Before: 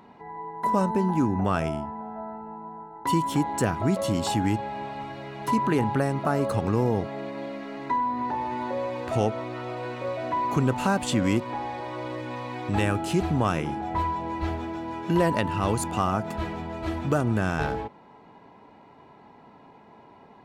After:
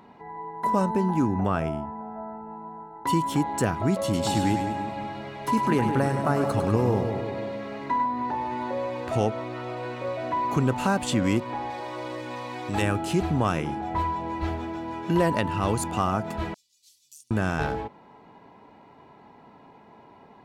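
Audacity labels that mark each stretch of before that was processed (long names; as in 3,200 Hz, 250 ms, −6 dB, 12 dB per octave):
1.470000	2.500000	parametric band 6,900 Hz −8.5 dB 2.3 octaves
4.030000	8.060000	echo with a time of its own for lows and highs split 940 Hz, lows 168 ms, highs 101 ms, level −6.5 dB
11.700000	12.820000	bass and treble bass −5 dB, treble +6 dB
16.540000	17.310000	inverse Chebyshev high-pass filter stop band from 1,600 Hz, stop band 60 dB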